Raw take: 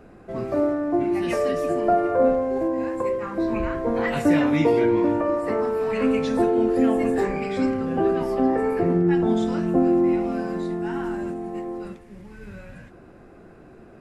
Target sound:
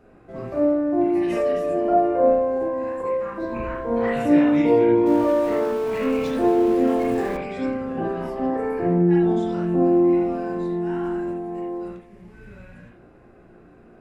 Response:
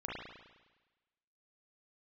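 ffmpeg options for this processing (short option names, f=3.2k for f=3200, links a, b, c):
-filter_complex "[0:a]asettb=1/sr,asplit=3[a][b][c];[a]atrim=end=5.064[d];[b]atrim=start=5.06:end=7.37,asetpts=PTS-STARTPTS,afade=t=in:d=0.004:c=qsin,afade=t=out:st=2.306:d=0.004:c=qsin,aeval=exprs='val(0)+0.5*0.0376*sgn(val(0))':c=same[e];[c]atrim=start=7.366[f];[d][e]acrossfade=d=0.004:c1=hsin:c2=qsin[g];[g][f]acrossfade=d=0.004:c1=qsin:c2=hsin[h];[1:a]atrim=start_sample=2205,atrim=end_sample=4410[i];[h][i]afir=irnorm=-1:irlink=0,volume=-2.5dB"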